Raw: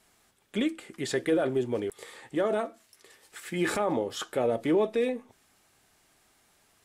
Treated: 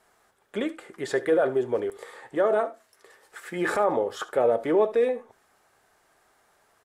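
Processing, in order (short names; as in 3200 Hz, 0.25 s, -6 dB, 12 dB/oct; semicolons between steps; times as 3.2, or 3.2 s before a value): band shelf 840 Hz +9.5 dB 2.5 oct; echo 73 ms -17.5 dB; gain -4 dB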